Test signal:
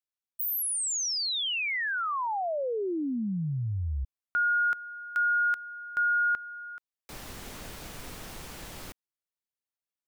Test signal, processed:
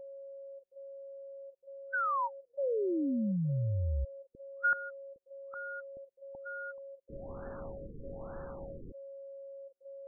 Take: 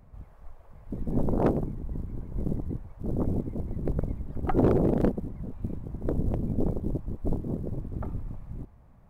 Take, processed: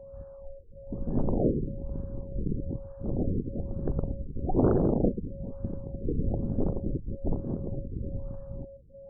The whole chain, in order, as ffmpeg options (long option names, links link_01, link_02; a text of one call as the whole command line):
ffmpeg -i in.wav -af "aeval=exprs='val(0)+0.00708*sin(2*PI*550*n/s)':channel_layout=same,afftfilt=real='re*lt(b*sr/1024,500*pow(1800/500,0.5+0.5*sin(2*PI*1.1*pts/sr)))':imag='im*lt(b*sr/1024,500*pow(1800/500,0.5+0.5*sin(2*PI*1.1*pts/sr)))':win_size=1024:overlap=0.75,volume=-1dB" out.wav